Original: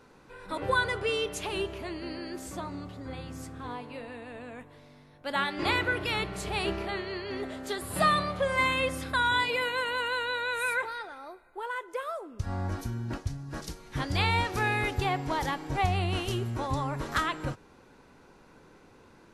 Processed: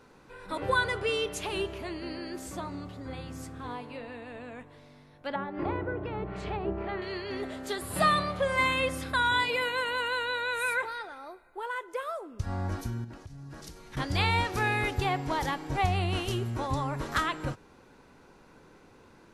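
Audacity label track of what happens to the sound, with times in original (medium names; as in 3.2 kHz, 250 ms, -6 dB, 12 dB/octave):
3.910000	7.020000	low-pass that closes with the level closes to 790 Hz, closed at -26.5 dBFS
13.040000	13.970000	compression 12:1, threshold -40 dBFS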